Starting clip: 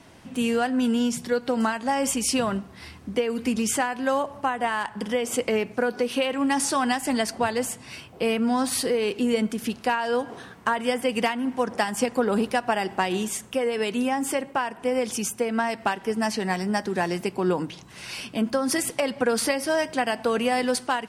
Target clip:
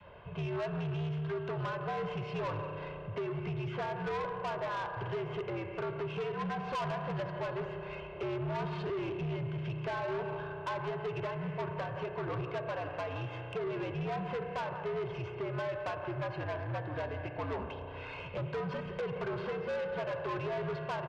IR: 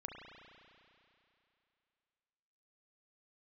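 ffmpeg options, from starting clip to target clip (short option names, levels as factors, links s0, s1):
-filter_complex "[0:a]aecho=1:1:171:0.141,alimiter=limit=0.158:level=0:latency=1:release=367,highpass=f=180:t=q:w=0.5412,highpass=f=180:t=q:w=1.307,lowpass=f=2800:t=q:w=0.5176,lowpass=f=2800:t=q:w=0.7071,lowpass=f=2800:t=q:w=1.932,afreqshift=-88,aecho=1:1:1.9:0.64,asplit=2[s0][s1];[1:a]atrim=start_sample=2205[s2];[s1][s2]afir=irnorm=-1:irlink=0,volume=1.12[s3];[s0][s3]amix=inputs=2:normalize=0,adynamicequalizer=threshold=0.0251:dfrequency=530:dqfactor=1:tfrequency=530:tqfactor=1:attack=5:release=100:ratio=0.375:range=2:mode=cutabove:tftype=bell,acrossover=split=120|1400[s4][s5][s6];[s4]acompressor=threshold=0.00891:ratio=4[s7];[s5]acompressor=threshold=0.112:ratio=4[s8];[s6]acompressor=threshold=0.0141:ratio=4[s9];[s7][s8][s9]amix=inputs=3:normalize=0,equalizer=f=125:t=o:w=1:g=-6,equalizer=f=250:t=o:w=1:g=-11,equalizer=f=500:t=o:w=1:g=-3,equalizer=f=2000:t=o:w=1:g=-12,asoftclip=type=tanh:threshold=0.0251"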